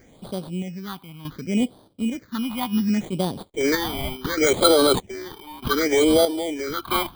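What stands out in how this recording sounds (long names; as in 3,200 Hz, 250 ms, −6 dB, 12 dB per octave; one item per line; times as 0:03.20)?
sample-and-hold tremolo 1.6 Hz, depth 85%
aliases and images of a low sample rate 2,700 Hz, jitter 0%
phaser sweep stages 6, 0.68 Hz, lowest notch 460–2,000 Hz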